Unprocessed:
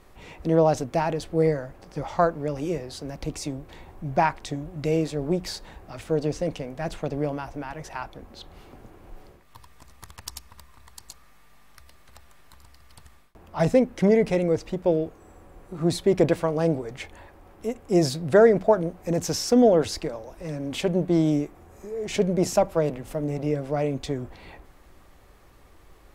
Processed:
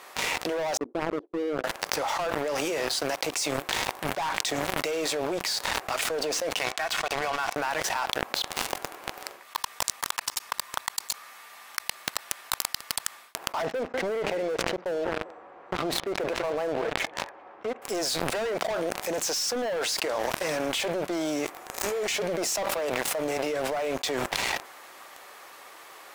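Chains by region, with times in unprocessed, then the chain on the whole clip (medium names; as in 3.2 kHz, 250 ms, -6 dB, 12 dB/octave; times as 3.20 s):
0.77–1.64 s: Butterworth band-pass 320 Hz, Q 2.1 + gate -50 dBFS, range -22 dB
6.59–7.56 s: high-pass 910 Hz + distance through air 72 m + comb 2.7 ms, depth 50%
13.62–17.82 s: tape spacing loss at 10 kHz 42 dB + feedback delay 196 ms, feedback 24%, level -19.5 dB
whole clip: high-pass 760 Hz 12 dB/octave; waveshaping leveller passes 5; level flattener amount 100%; trim -16.5 dB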